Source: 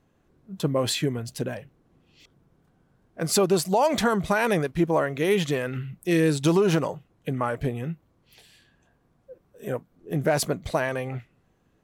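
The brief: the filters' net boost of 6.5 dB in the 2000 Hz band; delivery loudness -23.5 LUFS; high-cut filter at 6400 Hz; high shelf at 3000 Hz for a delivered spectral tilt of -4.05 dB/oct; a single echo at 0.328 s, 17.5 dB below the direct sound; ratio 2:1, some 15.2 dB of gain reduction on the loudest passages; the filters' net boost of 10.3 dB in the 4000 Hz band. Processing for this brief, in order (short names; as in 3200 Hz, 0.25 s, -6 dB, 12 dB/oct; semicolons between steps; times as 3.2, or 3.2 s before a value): LPF 6400 Hz; bell 2000 Hz +4.5 dB; high shelf 3000 Hz +6.5 dB; bell 4000 Hz +7 dB; compressor 2:1, threshold -44 dBFS; echo 0.328 s -17.5 dB; gain +13 dB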